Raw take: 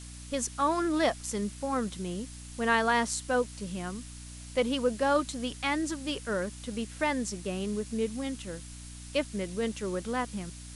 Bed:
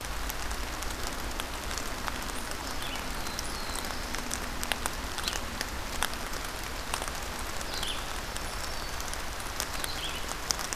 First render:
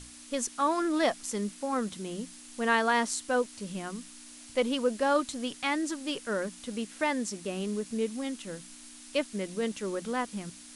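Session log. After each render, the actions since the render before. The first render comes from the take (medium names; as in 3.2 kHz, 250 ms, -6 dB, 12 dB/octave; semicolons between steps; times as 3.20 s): hum notches 60/120/180 Hz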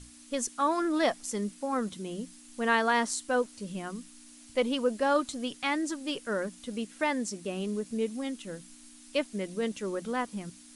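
noise reduction 6 dB, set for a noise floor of -49 dBFS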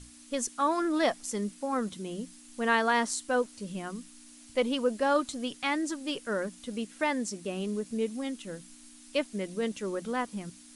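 no audible change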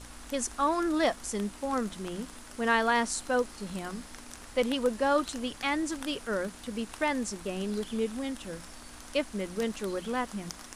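add bed -13.5 dB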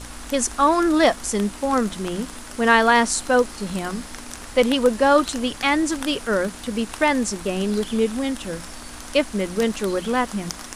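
trim +10 dB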